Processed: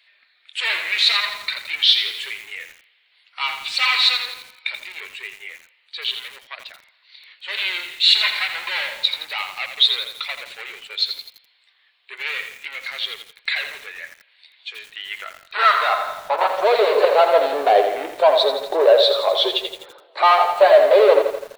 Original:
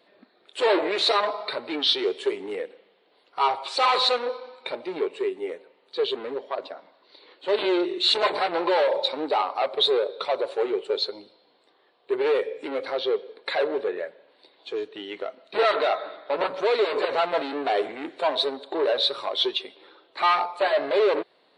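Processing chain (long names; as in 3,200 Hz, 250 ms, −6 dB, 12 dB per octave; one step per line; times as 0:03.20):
high-pass filter sweep 2,200 Hz → 550 Hz, 0:14.84–0:16.95
feedback echo at a low word length 84 ms, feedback 55%, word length 7 bits, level −7.5 dB
level +4 dB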